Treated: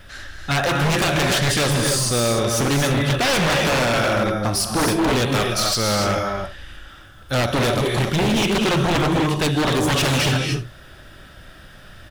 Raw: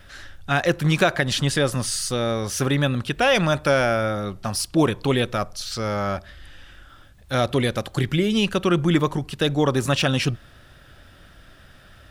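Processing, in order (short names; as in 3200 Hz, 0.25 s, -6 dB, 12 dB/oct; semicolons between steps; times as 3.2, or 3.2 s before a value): 5.27–6 high shelf 2500 Hz +7.5 dB; early reflections 43 ms -14.5 dB, 67 ms -15 dB; non-linear reverb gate 0.32 s rising, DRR 3 dB; wavefolder -17.5 dBFS; gain +4 dB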